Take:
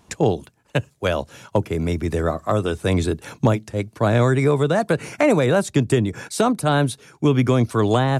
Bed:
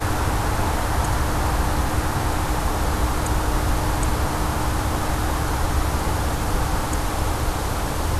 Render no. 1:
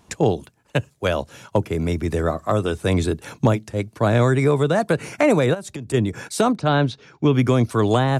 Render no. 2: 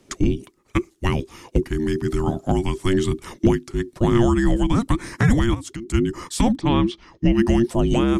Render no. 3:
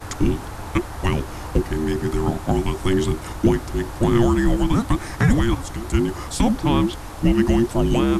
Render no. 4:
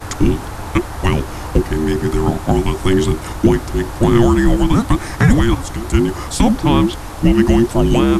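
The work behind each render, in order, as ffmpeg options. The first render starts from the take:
ffmpeg -i in.wav -filter_complex "[0:a]asplit=3[link_01][link_02][link_03];[link_01]afade=type=out:start_time=5.53:duration=0.02[link_04];[link_02]acompressor=threshold=-29dB:ratio=5:attack=3.2:release=140:knee=1:detection=peak,afade=type=in:start_time=5.53:duration=0.02,afade=type=out:start_time=5.93:duration=0.02[link_05];[link_03]afade=type=in:start_time=5.93:duration=0.02[link_06];[link_04][link_05][link_06]amix=inputs=3:normalize=0,asettb=1/sr,asplit=3[link_07][link_08][link_09];[link_07]atrim=end=6.564[link_10];[link_08]atrim=start=6.56:end=7.33,asetpts=PTS-STARTPTS,afade=type=in:duration=0.004:curve=qsin,afade=type=out:start_time=0.766:duration=0.004:curve=qsin,lowpass=frequency=5400:width=0.5412,lowpass=frequency=5400:width=1.3066[link_11];[link_09]atrim=start=7.326[link_12];[link_10][link_11]acrossfade=duration=0.004:curve1=hsin:curve2=qsin[link_13];[link_13][link_12]acrossfade=duration=0.004:curve1=qsin:curve2=hsin" out.wav
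ffmpeg -i in.wav -af "afreqshift=-470" out.wav
ffmpeg -i in.wav -i bed.wav -filter_complex "[1:a]volume=-11dB[link_01];[0:a][link_01]amix=inputs=2:normalize=0" out.wav
ffmpeg -i in.wav -af "volume=5.5dB,alimiter=limit=-1dB:level=0:latency=1" out.wav

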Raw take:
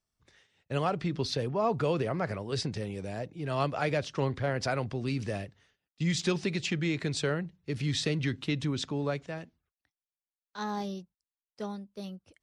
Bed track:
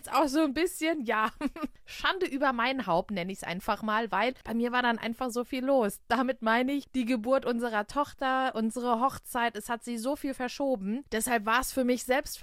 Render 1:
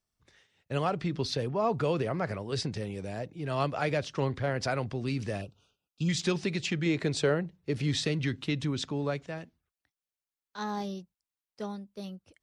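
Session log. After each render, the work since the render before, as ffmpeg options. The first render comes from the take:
ffmpeg -i in.wav -filter_complex "[0:a]asettb=1/sr,asplit=3[link_01][link_02][link_03];[link_01]atrim=end=5.414[link_04];[link_02]atrim=start=5.41:end=6.09,asetpts=PTS-STARTPTS,afade=type=in:duration=0.004:curve=qsin,afade=type=out:start_time=0.676:duration=0.004:curve=qsin,asuperstop=centerf=1900:order=20:qfactor=2.1[link_05];[link_03]atrim=start=6.086[link_06];[link_04][link_05]acrossfade=duration=0.004:curve1=hsin:curve2=qsin[link_07];[link_07][link_06]acrossfade=duration=0.004:curve1=qsin:curve2=hsin,asettb=1/sr,asplit=3[link_08][link_09][link_10];[link_08]atrim=end=6.864[link_11];[link_09]atrim=start=6.86:end=8.01,asetpts=PTS-STARTPTS,afade=type=in:duration=0.004:curve=qsin,afade=type=out:start_time=1.146:duration=0.004:curve=qsin,equalizer=frequency=520:width_type=o:width=1.9:gain=5.5[link_12];[link_10]atrim=start=8.006[link_13];[link_11][link_12]acrossfade=duration=0.004:curve1=hsin:curve2=qsin[link_14];[link_14][link_13]acrossfade=duration=0.004:curve1=qsin:curve2=hsin" out.wav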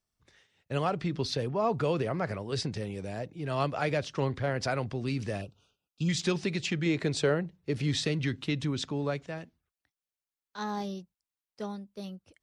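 ffmpeg -i in.wav -af anull out.wav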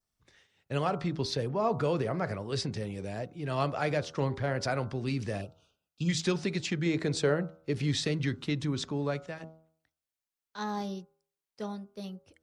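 ffmpeg -i in.wav -af "bandreject=frequency=80.05:width_type=h:width=4,bandreject=frequency=160.1:width_type=h:width=4,bandreject=frequency=240.15:width_type=h:width=4,bandreject=frequency=320.2:width_type=h:width=4,bandreject=frequency=400.25:width_type=h:width=4,bandreject=frequency=480.3:width_type=h:width=4,bandreject=frequency=560.35:width_type=h:width=4,bandreject=frequency=640.4:width_type=h:width=4,bandreject=frequency=720.45:width_type=h:width=4,bandreject=frequency=800.5:width_type=h:width=4,bandreject=frequency=880.55:width_type=h:width=4,bandreject=frequency=960.6:width_type=h:width=4,bandreject=frequency=1040.65:width_type=h:width=4,bandreject=frequency=1120.7:width_type=h:width=4,bandreject=frequency=1200.75:width_type=h:width=4,bandreject=frequency=1280.8:width_type=h:width=4,bandreject=frequency=1360.85:width_type=h:width=4,bandreject=frequency=1440.9:width_type=h:width=4,bandreject=frequency=1520.95:width_type=h:width=4,adynamicequalizer=threshold=0.00251:dfrequency=2800:dqfactor=2.3:tfrequency=2800:tqfactor=2.3:attack=5:release=100:ratio=0.375:range=2.5:mode=cutabove:tftype=bell" out.wav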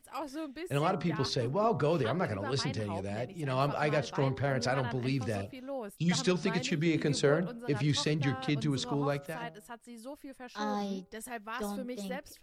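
ffmpeg -i in.wav -i bed.wav -filter_complex "[1:a]volume=-13.5dB[link_01];[0:a][link_01]amix=inputs=2:normalize=0" out.wav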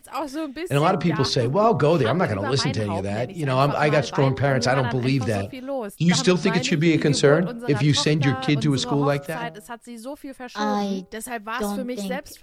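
ffmpeg -i in.wav -af "volume=10.5dB" out.wav

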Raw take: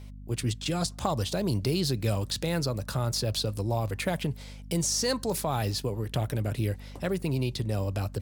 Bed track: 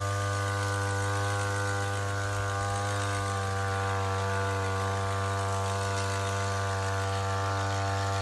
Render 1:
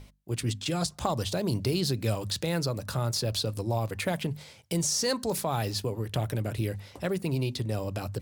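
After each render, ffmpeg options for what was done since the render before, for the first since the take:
ffmpeg -i in.wav -af "bandreject=frequency=50:width_type=h:width=6,bandreject=frequency=100:width_type=h:width=6,bandreject=frequency=150:width_type=h:width=6,bandreject=frequency=200:width_type=h:width=6,bandreject=frequency=250:width_type=h:width=6" out.wav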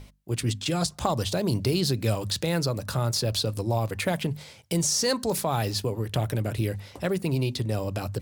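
ffmpeg -i in.wav -af "volume=3dB" out.wav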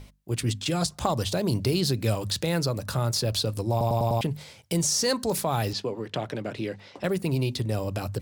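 ffmpeg -i in.wav -filter_complex "[0:a]asettb=1/sr,asplit=3[link_01][link_02][link_03];[link_01]atrim=end=5.734[link_04];[link_02]atrim=start=5.73:end=7.04,asetpts=PTS-STARTPTS,afade=type=in:duration=0.004:curve=qsin,afade=type=out:start_time=1.306:duration=0.004:curve=qsin,acrossover=split=160 6300:gain=0.0794 1 0.0708[link_05][link_06][link_07];[link_05][link_06][link_07]amix=inputs=3:normalize=0[link_08];[link_03]atrim=start=7.036[link_09];[link_04][link_08]acrossfade=duration=0.004:curve1=hsin:curve2=qsin[link_10];[link_10][link_09]acrossfade=duration=0.004:curve1=qsin:curve2=hsin,asplit=6[link_11][link_12][link_13][link_14][link_15][link_16];[link_11]atrim=end=3.812[link_17];[link_12]atrim=start=3.708:end=3.812[link_18];[link_13]atrim=start=3.708:end=3.812[link_19];[link_14]atrim=start=3.708:end=3.812[link_20];[link_15]atrim=start=3.708:end=3.812[link_21];[link_16]atrim=start=4.208[link_22];[link_17][link_18]acrossfade=duration=0.004:curve1=hsin:curve2=hsin[link_23];[link_23][link_19]acrossfade=duration=0.004:curve1=hsin:curve2=hsin[link_24];[link_24][link_20]acrossfade=duration=0.004:curve1=hsin:curve2=hsin[link_25];[link_25][link_21]acrossfade=duration=0.004:curve1=hsin:curve2=hsin[link_26];[link_26][link_22]acrossfade=duration=0.004:curve1=hsin:curve2=hsin" out.wav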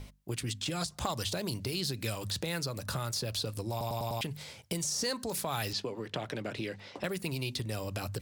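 ffmpeg -i in.wav -filter_complex "[0:a]acrossover=split=1300[link_01][link_02];[link_01]acompressor=threshold=-34dB:ratio=6[link_03];[link_02]alimiter=limit=-24dB:level=0:latency=1:release=137[link_04];[link_03][link_04]amix=inputs=2:normalize=0" out.wav

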